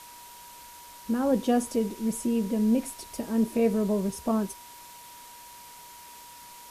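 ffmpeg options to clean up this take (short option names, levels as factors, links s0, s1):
-af "bandreject=f=960:w=30,afftdn=nr=25:nf=-47"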